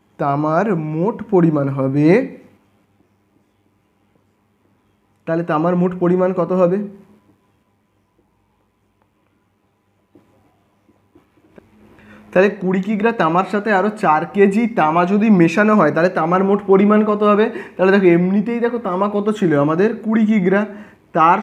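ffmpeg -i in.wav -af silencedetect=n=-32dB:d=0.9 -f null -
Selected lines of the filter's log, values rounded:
silence_start: 2.36
silence_end: 5.27 | silence_duration: 2.91
silence_start: 6.95
silence_end: 11.58 | silence_duration: 4.63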